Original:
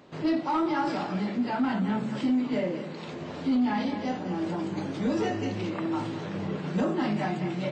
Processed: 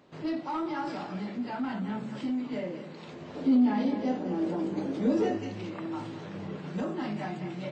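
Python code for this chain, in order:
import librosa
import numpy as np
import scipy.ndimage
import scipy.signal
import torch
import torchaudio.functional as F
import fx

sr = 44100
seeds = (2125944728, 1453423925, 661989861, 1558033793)

y = fx.graphic_eq_10(x, sr, hz=(125, 250, 500), db=(-4, 8, 7), at=(3.35, 5.38))
y = F.gain(torch.from_numpy(y), -6.0).numpy()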